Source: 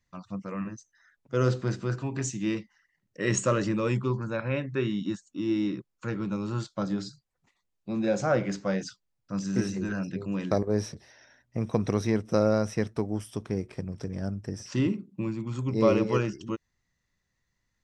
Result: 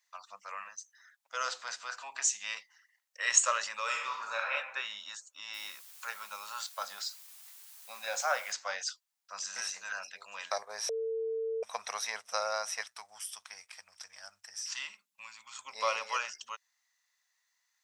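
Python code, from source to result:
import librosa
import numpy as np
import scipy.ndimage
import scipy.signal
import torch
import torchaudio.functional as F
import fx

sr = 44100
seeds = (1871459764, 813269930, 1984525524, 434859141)

y = fx.reverb_throw(x, sr, start_s=3.84, length_s=0.68, rt60_s=0.94, drr_db=-1.0)
y = fx.quant_dither(y, sr, seeds[0], bits=10, dither='triangular', at=(5.53, 8.51), fade=0.02)
y = fx.peak_eq(y, sr, hz=460.0, db=-12.5, octaves=2.0, at=(12.81, 15.65))
y = fx.edit(y, sr, fx.bleep(start_s=10.89, length_s=0.74, hz=449.0, db=-7.5), tone=tone)
y = scipy.signal.sosfilt(scipy.signal.cheby2(4, 40, 370.0, 'highpass', fs=sr, output='sos'), y)
y = fx.high_shelf(y, sr, hz=3500.0, db=8.5)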